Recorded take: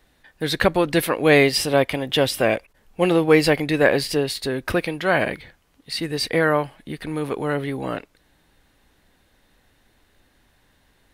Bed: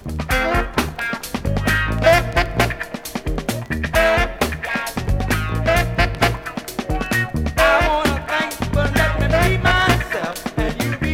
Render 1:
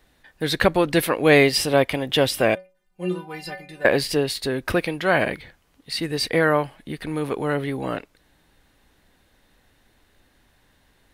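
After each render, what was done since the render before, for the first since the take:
0:02.55–0:03.85: stiff-string resonator 180 Hz, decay 0.33 s, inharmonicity 0.008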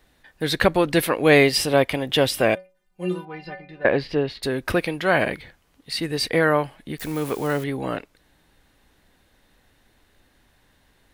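0:03.25–0:04.43: high-frequency loss of the air 290 metres
0:06.98–0:07.64: spike at every zero crossing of −28 dBFS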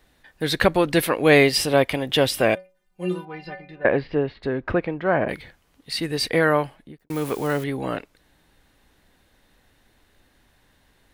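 0:03.75–0:05.28: low-pass filter 2,800 Hz → 1,200 Hz
0:06.61–0:07.10: fade out and dull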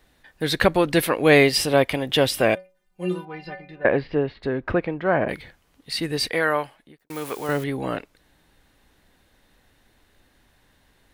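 0:06.29–0:07.49: low-shelf EQ 370 Hz −11.5 dB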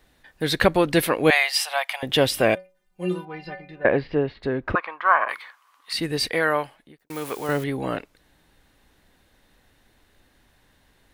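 0:01.30–0:02.03: elliptic high-pass filter 720 Hz, stop band 60 dB
0:04.75–0:05.93: high-pass with resonance 1,100 Hz, resonance Q 7.5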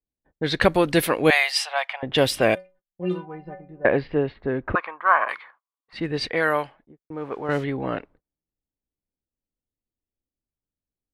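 noise gate −50 dBFS, range −30 dB
low-pass that shuts in the quiet parts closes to 480 Hz, open at −16.5 dBFS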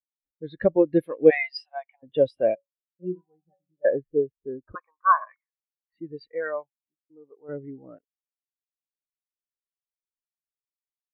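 upward compression, threshold −35 dBFS
every bin expanded away from the loudest bin 2.5 to 1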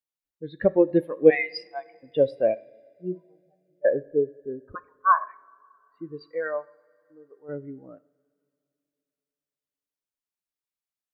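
coupled-rooms reverb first 0.6 s, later 3 s, from −18 dB, DRR 16 dB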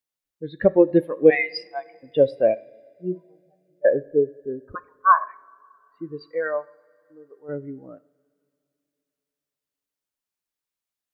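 level +3.5 dB
brickwall limiter −3 dBFS, peak gain reduction 3 dB

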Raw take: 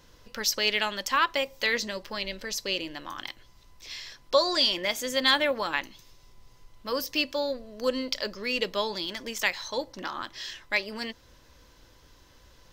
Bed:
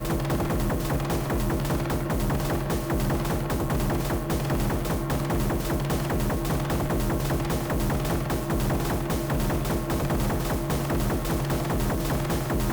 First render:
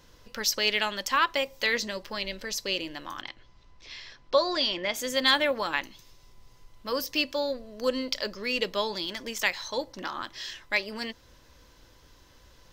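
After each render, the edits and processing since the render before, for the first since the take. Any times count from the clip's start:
0:03.21–0:04.94: high-frequency loss of the air 130 metres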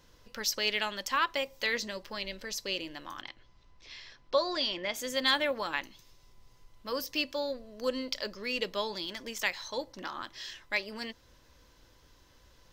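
level −4.5 dB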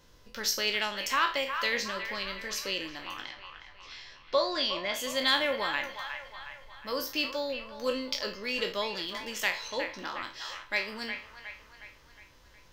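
peak hold with a decay on every bin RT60 0.33 s
on a send: delay with a band-pass on its return 362 ms, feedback 51%, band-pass 1,500 Hz, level −7 dB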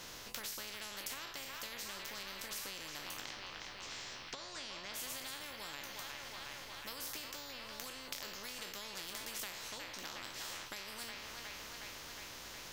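downward compressor, threshold −38 dBFS, peak gain reduction 16.5 dB
every bin compressed towards the loudest bin 4 to 1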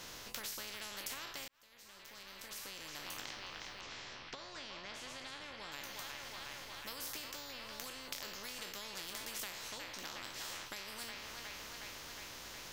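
0:01.48–0:03.16: fade in
0:03.81–0:05.72: high-frequency loss of the air 95 metres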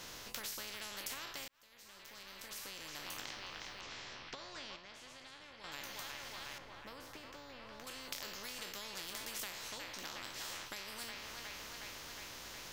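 0:04.76–0:05.64: clip gain −6.5 dB
0:06.58–0:07.87: low-pass filter 1,400 Hz 6 dB per octave

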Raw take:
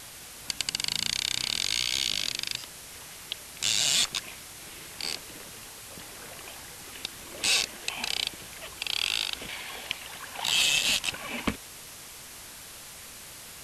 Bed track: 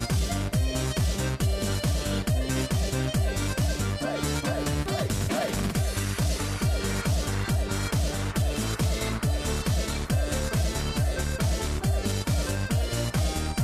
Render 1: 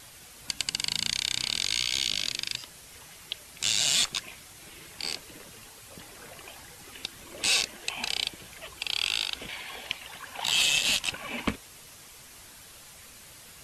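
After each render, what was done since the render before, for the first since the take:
broadband denoise 6 dB, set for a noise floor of −45 dBFS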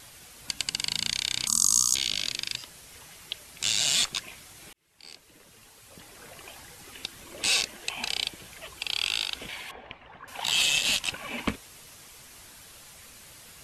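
0:01.47–0:01.95: drawn EQ curve 120 Hz 0 dB, 230 Hz +8 dB, 390 Hz −8 dB, 750 Hz −10 dB, 1,200 Hz +13 dB, 1,800 Hz −28 dB, 3,900 Hz −9 dB, 6,200 Hz +14 dB
0:04.73–0:06.48: fade in
0:09.71–0:10.28: low-pass filter 1,400 Hz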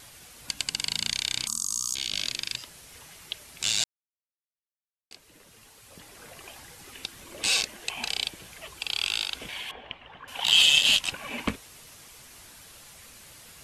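0:01.41–0:02.13: downward compressor 4 to 1, threshold −25 dBFS
0:03.84–0:05.11: silence
0:09.55–0:11.01: parametric band 3,100 Hz +9 dB 0.4 octaves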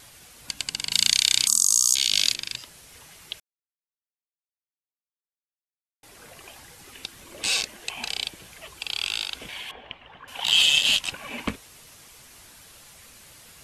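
0:00.92–0:02.34: high-shelf EQ 2,100 Hz +11.5 dB
0:03.40–0:06.03: silence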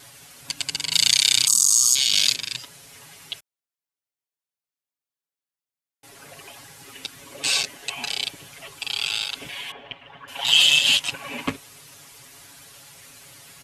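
high-pass filter 58 Hz
comb filter 7.2 ms, depth 93%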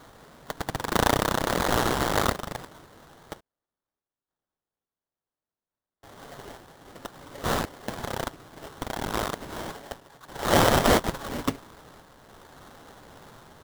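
sample-rate reduction 2,500 Hz, jitter 20%
sample-and-hold tremolo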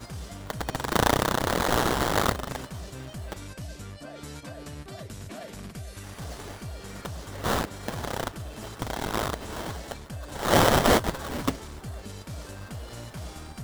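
mix in bed track −13 dB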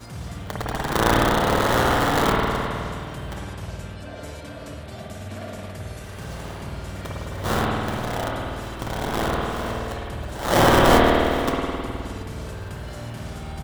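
double-tracking delay 27 ms −14 dB
spring reverb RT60 2.4 s, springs 52 ms, chirp 65 ms, DRR −4 dB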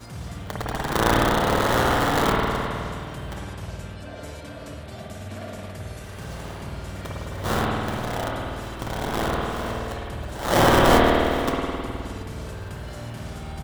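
level −1 dB

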